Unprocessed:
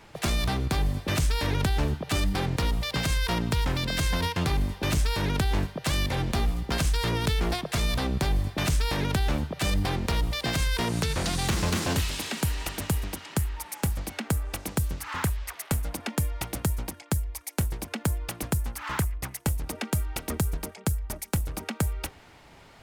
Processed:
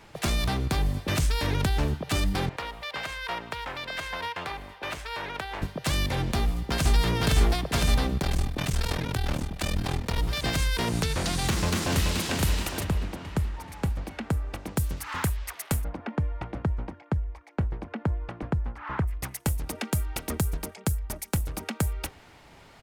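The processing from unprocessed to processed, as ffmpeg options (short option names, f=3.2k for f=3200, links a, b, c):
-filter_complex "[0:a]asettb=1/sr,asplit=3[a][b][c];[a]atrim=end=2.494[d];[b]atrim=start=2.49:end=5.62,asetpts=PTS-STARTPTS,afade=t=in:d=0.004:c=qsin,afade=t=out:st=3.126:d=0.004:c=qsin,acrossover=split=490 3200:gain=0.112 1 0.224[e][f][g];[e][f][g]amix=inputs=3:normalize=0[h];[c]atrim=start=5.616[i];[d][h]acrossfade=d=0.004:c1=hsin:c2=qsin[j];[j][i]acrossfade=d=0.004:c1=qsin:c2=hsin,asplit=2[k][l];[l]afade=t=in:st=6.34:d=0.01,afade=t=out:st=6.93:d=0.01,aecho=0:1:510|1020|1530|2040|2550|3060|3570|4080|4590|5100|5610|6120:0.891251|0.713001|0.570401|0.45632|0.365056|0.292045|0.233636|0.186909|0.149527|0.119622|0.0956973|0.0765579[m];[k][m]amix=inputs=2:normalize=0,asettb=1/sr,asplit=3[n][o][p];[n]atrim=end=8.184[q];[o]atrim=start=8.18:end=10.18,asetpts=PTS-STARTPTS,afade=t=in:d=0.004:c=qsin,afade=t=out:st=1.996:d=0.004:c=qsin,aeval=exprs='val(0)*sin(2*PI*20*n/s)':c=same[r];[p]atrim=start=10.176[s];[q][r]acrossfade=d=0.004:c1=hsin:c2=qsin[t];[t][s]acrossfade=d=0.004:c1=qsin:c2=hsin,asplit=2[u][v];[v]afade=t=in:st=11.49:d=0.01,afade=t=out:st=12.19:d=0.01,aecho=0:1:430|860|1290|1720|2150|2580|3010:0.630957|0.347027|0.190865|0.104976|0.0577365|0.0317551|0.0174653[w];[u][w]amix=inputs=2:normalize=0,asplit=3[x][y][z];[x]afade=t=out:st=12.83:d=0.02[aa];[y]lowpass=f=1.9k:p=1,afade=t=in:st=12.83:d=0.02,afade=t=out:st=14.76:d=0.02[ab];[z]afade=t=in:st=14.76:d=0.02[ac];[aa][ab][ac]amix=inputs=3:normalize=0,asplit=3[ad][ae][af];[ad]afade=t=out:st=15.83:d=0.02[ag];[ae]lowpass=1.6k,afade=t=in:st=15.83:d=0.02,afade=t=out:st=19.07:d=0.02[ah];[af]afade=t=in:st=19.07:d=0.02[ai];[ag][ah][ai]amix=inputs=3:normalize=0"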